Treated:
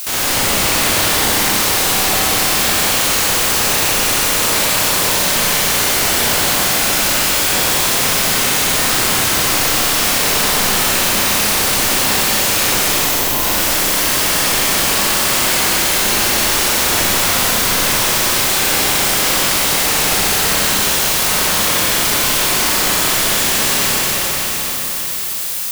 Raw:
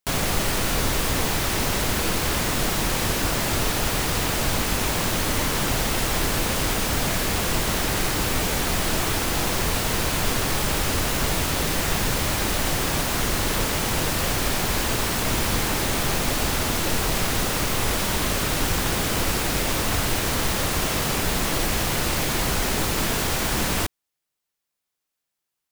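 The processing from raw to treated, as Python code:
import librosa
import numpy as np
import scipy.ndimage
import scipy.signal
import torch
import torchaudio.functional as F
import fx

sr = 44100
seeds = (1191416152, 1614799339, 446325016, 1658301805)

y = fx.spec_clip(x, sr, under_db=21)
y = fx.dmg_noise_colour(y, sr, seeds[0], colour='blue', level_db=-36.0)
y = fx.spec_erase(y, sr, start_s=13.0, length_s=0.39, low_hz=1100.0, high_hz=11000.0)
y = fx.rev_schroeder(y, sr, rt60_s=3.8, comb_ms=30, drr_db=-9.5)
y = fx.env_flatten(y, sr, amount_pct=50)
y = y * librosa.db_to_amplitude(-3.0)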